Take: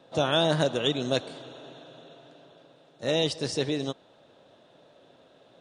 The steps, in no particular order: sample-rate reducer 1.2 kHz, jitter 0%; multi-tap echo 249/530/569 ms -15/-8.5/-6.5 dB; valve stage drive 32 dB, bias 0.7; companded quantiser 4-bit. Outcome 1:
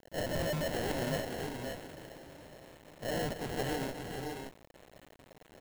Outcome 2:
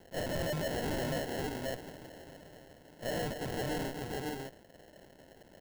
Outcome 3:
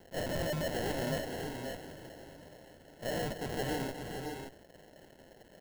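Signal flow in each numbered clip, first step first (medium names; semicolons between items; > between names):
valve stage > sample-rate reducer > multi-tap echo > companded quantiser; companded quantiser > multi-tap echo > valve stage > sample-rate reducer; companded quantiser > valve stage > sample-rate reducer > multi-tap echo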